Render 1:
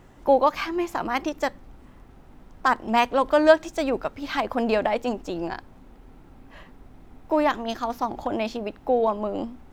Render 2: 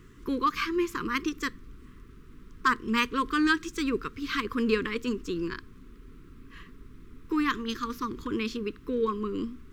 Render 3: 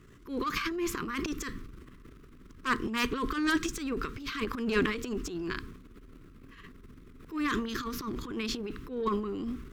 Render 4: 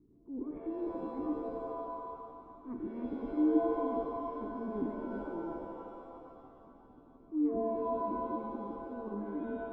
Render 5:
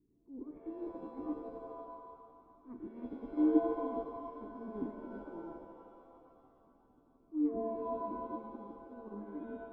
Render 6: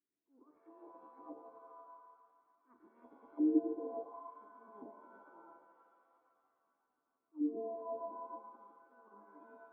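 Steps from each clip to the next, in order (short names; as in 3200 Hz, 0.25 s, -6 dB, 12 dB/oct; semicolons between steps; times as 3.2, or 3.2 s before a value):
elliptic band-stop 440–1100 Hz, stop band 50 dB
added harmonics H 4 -8 dB, 6 -13 dB, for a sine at -10.5 dBFS; transient shaper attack -11 dB, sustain +11 dB; gain -3.5 dB
vocal tract filter u; shimmer reverb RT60 2.3 s, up +7 st, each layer -2 dB, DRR 5 dB
upward expander 1.5:1, over -44 dBFS; gain +1 dB
auto-wah 340–1800 Hz, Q 2.2, down, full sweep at -29.5 dBFS; gain -1.5 dB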